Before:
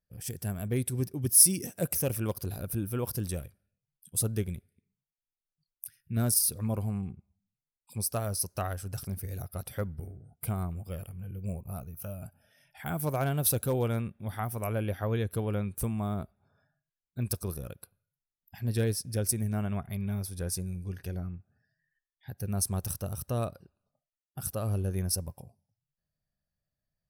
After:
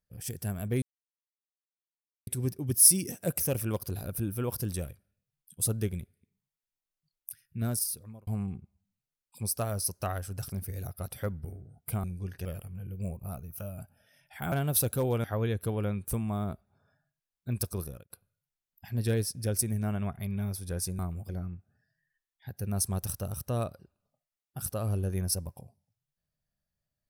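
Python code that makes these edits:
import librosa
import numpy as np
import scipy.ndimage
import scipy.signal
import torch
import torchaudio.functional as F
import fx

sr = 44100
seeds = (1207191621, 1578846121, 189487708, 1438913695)

y = fx.edit(x, sr, fx.insert_silence(at_s=0.82, length_s=1.45),
    fx.fade_out_span(start_s=5.97, length_s=0.85),
    fx.swap(start_s=10.59, length_s=0.3, other_s=20.69, other_length_s=0.41),
    fx.cut(start_s=12.96, length_s=0.26),
    fx.cut(start_s=13.94, length_s=1.0),
    fx.fade_out_span(start_s=17.53, length_s=0.27), tone=tone)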